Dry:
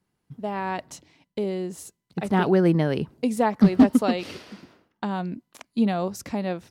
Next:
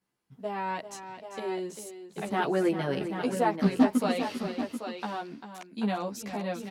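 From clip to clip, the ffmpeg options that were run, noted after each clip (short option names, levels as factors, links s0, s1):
-filter_complex "[0:a]lowshelf=f=210:g=-12,asplit=2[s0][s1];[s1]aecho=0:1:395|786:0.299|0.398[s2];[s0][s2]amix=inputs=2:normalize=0,asplit=2[s3][s4];[s4]adelay=12,afreqshift=-0.33[s5];[s3][s5]amix=inputs=2:normalize=1"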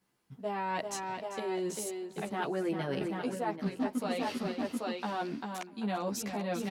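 -filter_complex "[0:a]areverse,acompressor=threshold=0.0141:ratio=5,areverse,asplit=2[s0][s1];[s1]adelay=641.4,volume=0.0708,highshelf=f=4000:g=-14.4[s2];[s0][s2]amix=inputs=2:normalize=0,volume=1.88"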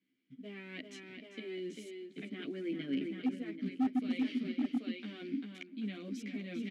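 -filter_complex "[0:a]acrusher=bits=7:mode=log:mix=0:aa=0.000001,asplit=3[s0][s1][s2];[s0]bandpass=f=270:t=q:w=8,volume=1[s3];[s1]bandpass=f=2290:t=q:w=8,volume=0.501[s4];[s2]bandpass=f=3010:t=q:w=8,volume=0.355[s5];[s3][s4][s5]amix=inputs=3:normalize=0,asoftclip=type=hard:threshold=0.0188,volume=2.51"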